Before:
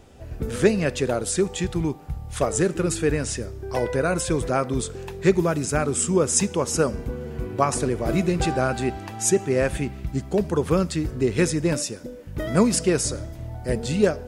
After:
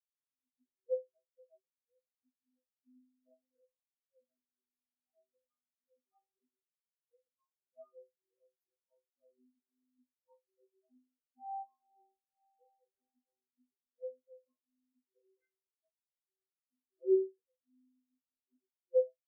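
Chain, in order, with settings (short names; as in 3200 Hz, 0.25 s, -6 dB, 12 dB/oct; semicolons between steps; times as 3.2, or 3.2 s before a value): tracing distortion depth 0.47 ms; notches 50/100/150/200/250/300/350/400 Hz; frequency shift +270 Hz; metallic resonator 170 Hz, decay 0.52 s, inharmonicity 0.002; speed mistake 45 rpm record played at 33 rpm; spectral expander 4:1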